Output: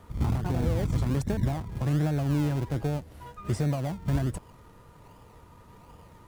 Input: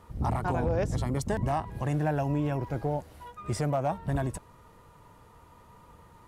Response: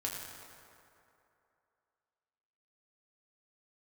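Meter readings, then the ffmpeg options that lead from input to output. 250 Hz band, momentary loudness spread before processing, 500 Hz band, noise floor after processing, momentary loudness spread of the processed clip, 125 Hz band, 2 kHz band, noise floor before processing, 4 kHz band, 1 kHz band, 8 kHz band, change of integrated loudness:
+2.5 dB, 8 LU, −3.5 dB, −53 dBFS, 7 LU, +3.5 dB, −2.5 dB, −56 dBFS, +2.5 dB, −7.0 dB, −1.0 dB, +1.5 dB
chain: -filter_complex "[0:a]acrossover=split=350[link_01][link_02];[link_02]acompressor=threshold=-39dB:ratio=6[link_03];[link_01][link_03]amix=inputs=2:normalize=0,asplit=2[link_04][link_05];[link_05]acrusher=samples=31:mix=1:aa=0.000001:lfo=1:lforange=18.6:lforate=1.3,volume=-5dB[link_06];[link_04][link_06]amix=inputs=2:normalize=0"

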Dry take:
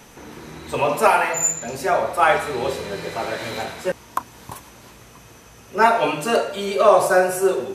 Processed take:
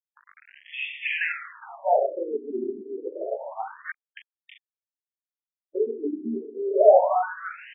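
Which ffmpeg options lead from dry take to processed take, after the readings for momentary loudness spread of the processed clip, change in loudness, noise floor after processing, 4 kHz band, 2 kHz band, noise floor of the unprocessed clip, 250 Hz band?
18 LU, −5.5 dB, below −85 dBFS, below −10 dB, −8.0 dB, −46 dBFS, −6.0 dB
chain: -af "aeval=exprs='val(0)*gte(abs(val(0)),0.0282)':channel_layout=same,afftfilt=real='re*between(b*sr/1024,290*pow(2600/290,0.5+0.5*sin(2*PI*0.28*pts/sr))/1.41,290*pow(2600/290,0.5+0.5*sin(2*PI*0.28*pts/sr))*1.41)':imag='im*between(b*sr/1024,290*pow(2600/290,0.5+0.5*sin(2*PI*0.28*pts/sr))/1.41,290*pow(2600/290,0.5+0.5*sin(2*PI*0.28*pts/sr))*1.41)':win_size=1024:overlap=0.75"

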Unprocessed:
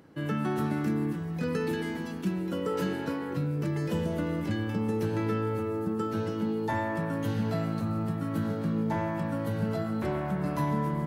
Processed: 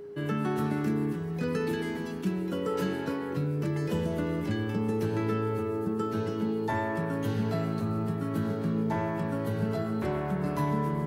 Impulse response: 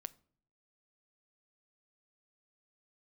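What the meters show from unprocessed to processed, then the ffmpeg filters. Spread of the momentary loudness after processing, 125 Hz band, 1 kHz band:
2 LU, 0.0 dB, 0.0 dB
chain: -af "aeval=exprs='val(0)+0.01*sin(2*PI*410*n/s)':channel_layout=same"

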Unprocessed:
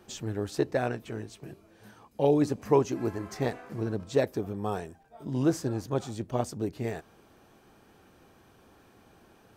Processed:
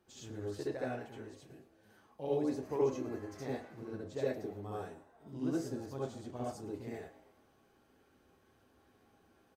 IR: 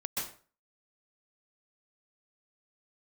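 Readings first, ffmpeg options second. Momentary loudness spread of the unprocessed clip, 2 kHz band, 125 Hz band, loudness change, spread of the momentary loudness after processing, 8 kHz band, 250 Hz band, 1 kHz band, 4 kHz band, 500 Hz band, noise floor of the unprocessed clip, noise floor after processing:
16 LU, −9.5 dB, −12.0 dB, −9.0 dB, 16 LU, −11.0 dB, −9.0 dB, −10.5 dB, −10.5 dB, −8.5 dB, −60 dBFS, −69 dBFS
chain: -filter_complex "[0:a]asplit=5[link_01][link_02][link_03][link_04][link_05];[link_02]adelay=112,afreqshift=97,volume=-17.5dB[link_06];[link_03]adelay=224,afreqshift=194,volume=-23.3dB[link_07];[link_04]adelay=336,afreqshift=291,volume=-29.2dB[link_08];[link_05]adelay=448,afreqshift=388,volume=-35dB[link_09];[link_01][link_06][link_07][link_08][link_09]amix=inputs=5:normalize=0[link_10];[1:a]atrim=start_sample=2205,asetrate=83790,aresample=44100[link_11];[link_10][link_11]afir=irnorm=-1:irlink=0,volume=-8.5dB"

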